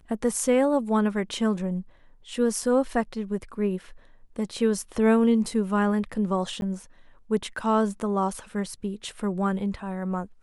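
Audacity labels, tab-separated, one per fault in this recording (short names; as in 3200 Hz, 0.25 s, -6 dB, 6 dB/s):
6.610000	6.620000	gap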